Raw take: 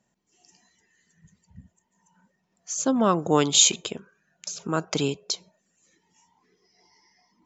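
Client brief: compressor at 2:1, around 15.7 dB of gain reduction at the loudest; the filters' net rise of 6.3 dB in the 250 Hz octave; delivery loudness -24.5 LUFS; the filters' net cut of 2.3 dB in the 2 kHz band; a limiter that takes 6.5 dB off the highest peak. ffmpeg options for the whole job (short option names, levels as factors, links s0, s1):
-af "equalizer=f=250:t=o:g=7.5,equalizer=f=2000:t=o:g=-3.5,acompressor=threshold=0.00708:ratio=2,volume=5.31,alimiter=limit=0.237:level=0:latency=1"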